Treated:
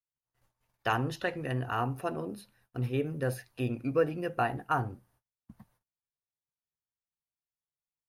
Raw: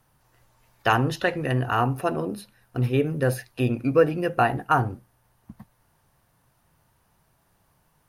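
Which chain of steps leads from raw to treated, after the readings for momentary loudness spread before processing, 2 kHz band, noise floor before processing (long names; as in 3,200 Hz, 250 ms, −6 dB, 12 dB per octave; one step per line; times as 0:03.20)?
10 LU, −8.5 dB, −67 dBFS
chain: noise gate −59 dBFS, range −34 dB
level −8.5 dB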